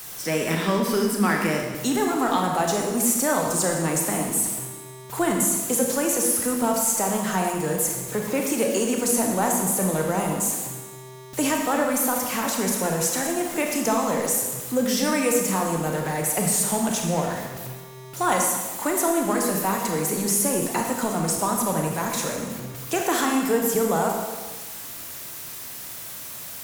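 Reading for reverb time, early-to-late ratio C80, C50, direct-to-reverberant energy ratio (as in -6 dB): 1.3 s, 4.5 dB, 3.0 dB, 1.0 dB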